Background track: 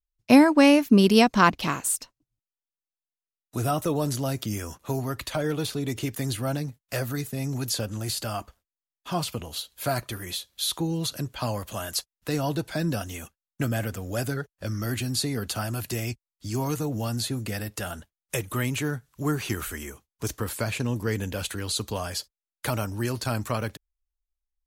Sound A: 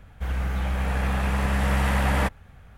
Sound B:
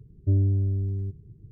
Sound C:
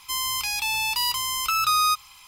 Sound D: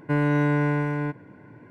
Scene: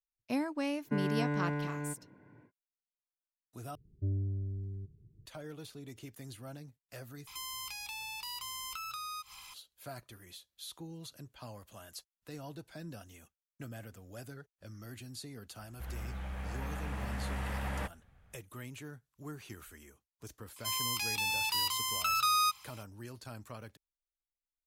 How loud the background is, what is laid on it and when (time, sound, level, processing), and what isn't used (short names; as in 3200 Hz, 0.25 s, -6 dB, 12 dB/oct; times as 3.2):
background track -18.5 dB
0.82 add D -11.5 dB, fades 0.10 s
3.75 replace with B -12 dB
7.27 replace with C -2 dB + compressor 4:1, threshold -40 dBFS
15.59 add A -14.5 dB
20.56 add C -7.5 dB + HPF 76 Hz